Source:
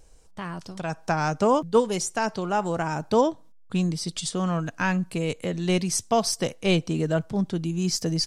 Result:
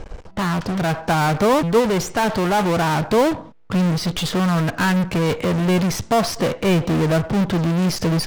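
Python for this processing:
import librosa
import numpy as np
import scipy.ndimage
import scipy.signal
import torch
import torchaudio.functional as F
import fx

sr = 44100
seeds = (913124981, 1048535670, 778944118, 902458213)

p1 = scipy.signal.sosfilt(scipy.signal.butter(2, 2300.0, 'lowpass', fs=sr, output='sos'), x)
p2 = fx.fuzz(p1, sr, gain_db=46.0, gate_db=-55.0)
y = p1 + (p2 * librosa.db_to_amplitude(-8.0))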